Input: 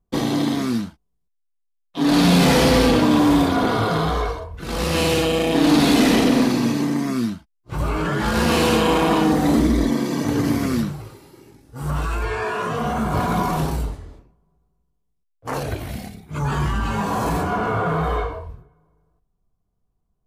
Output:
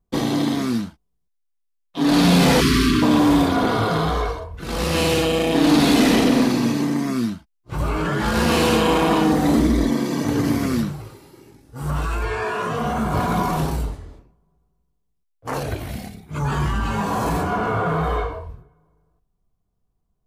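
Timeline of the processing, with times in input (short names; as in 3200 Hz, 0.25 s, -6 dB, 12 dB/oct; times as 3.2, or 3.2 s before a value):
2.61–3.03 spectral delete 450–1000 Hz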